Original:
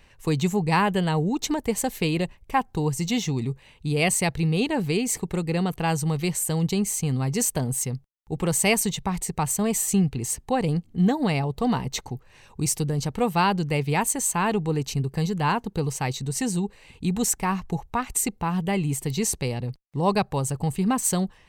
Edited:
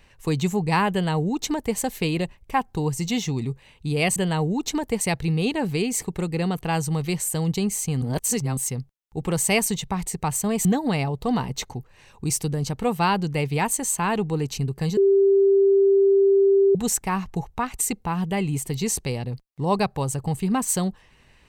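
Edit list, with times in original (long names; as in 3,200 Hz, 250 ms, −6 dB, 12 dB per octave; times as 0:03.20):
0:00.92–0:01.77: duplicate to 0:04.16
0:07.17–0:07.72: reverse
0:09.80–0:11.01: remove
0:15.33–0:17.11: beep over 393 Hz −13.5 dBFS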